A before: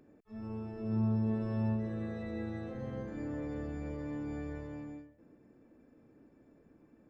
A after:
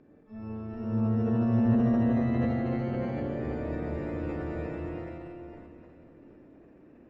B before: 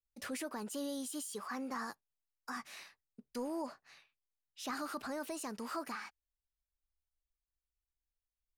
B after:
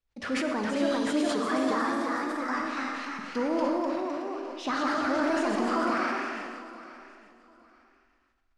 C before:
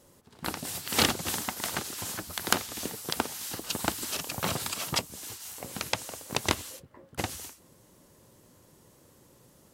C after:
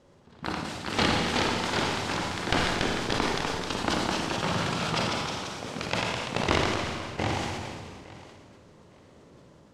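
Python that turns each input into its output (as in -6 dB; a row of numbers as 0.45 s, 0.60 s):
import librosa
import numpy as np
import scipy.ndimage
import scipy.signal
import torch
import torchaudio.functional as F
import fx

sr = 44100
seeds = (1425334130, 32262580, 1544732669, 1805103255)

y = np.minimum(x, 2.0 * 10.0 ** (-16.5 / 20.0) - x)
y = fx.high_shelf(y, sr, hz=7800.0, db=-11.5)
y = fx.echo_pitch(y, sr, ms=427, semitones=1, count=3, db_per_echo=-3.0)
y = fx.air_absorb(y, sr, metres=93.0)
y = fx.echo_feedback(y, sr, ms=861, feedback_pct=23, wet_db=-18.0)
y = fx.rev_schroeder(y, sr, rt60_s=1.7, comb_ms=38, drr_db=2.5)
y = fx.sustainer(y, sr, db_per_s=25.0)
y = y * 10.0 ** (-30 / 20.0) / np.sqrt(np.mean(np.square(y)))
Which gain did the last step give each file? +2.5 dB, +10.0 dB, +1.5 dB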